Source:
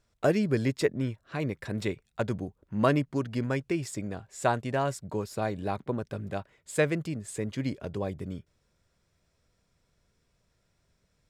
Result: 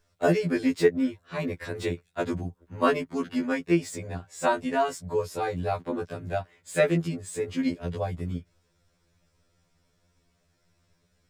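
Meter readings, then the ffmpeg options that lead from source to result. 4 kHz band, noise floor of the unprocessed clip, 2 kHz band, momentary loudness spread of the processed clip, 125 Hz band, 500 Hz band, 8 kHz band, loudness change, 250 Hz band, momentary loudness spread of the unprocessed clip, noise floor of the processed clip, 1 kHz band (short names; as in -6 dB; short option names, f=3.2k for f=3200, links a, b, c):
+2.5 dB, -74 dBFS, +3.0 dB, 10 LU, -1.0 dB, +3.5 dB, +1.5 dB, +2.5 dB, +3.0 dB, 10 LU, -71 dBFS, +3.5 dB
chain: -filter_complex "[0:a]acrossover=split=240|840|3100[a][b][c][d];[d]asoftclip=type=tanh:threshold=-35.5dB[e];[a][b][c][e]amix=inputs=4:normalize=0,afftfilt=real='re*2*eq(mod(b,4),0)':imag='im*2*eq(mod(b,4),0)':win_size=2048:overlap=0.75,volume=5.5dB"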